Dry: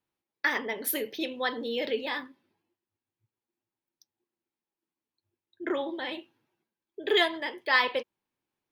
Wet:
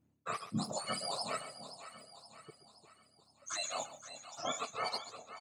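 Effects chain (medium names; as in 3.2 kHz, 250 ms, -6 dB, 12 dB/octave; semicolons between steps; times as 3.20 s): spectrum inverted on a logarithmic axis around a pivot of 1.5 kHz; peaking EQ 280 Hz +13.5 dB 0.41 oct; band-stop 5.4 kHz, Q 13; reverse; compression 8:1, threshold -38 dBFS, peak gain reduction 25.5 dB; reverse; delay 212 ms -14 dB; granular stretch 0.62×, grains 21 ms; on a send: two-band feedback delay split 720 Hz, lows 350 ms, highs 522 ms, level -12 dB; on the sum: trim +4.5 dB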